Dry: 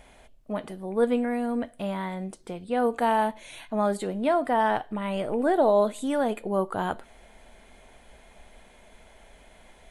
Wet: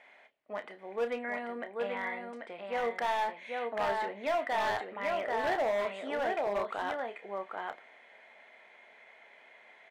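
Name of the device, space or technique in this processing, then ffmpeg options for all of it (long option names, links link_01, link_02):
megaphone: -filter_complex "[0:a]highpass=500,lowpass=3300,equalizer=frequency=2000:width_type=o:width=0.49:gain=10,aecho=1:1:788:0.596,asoftclip=type=hard:threshold=-21.5dB,asplit=2[link_01][link_02];[link_02]adelay=30,volume=-10dB[link_03];[link_01][link_03]amix=inputs=2:normalize=0,volume=-5dB"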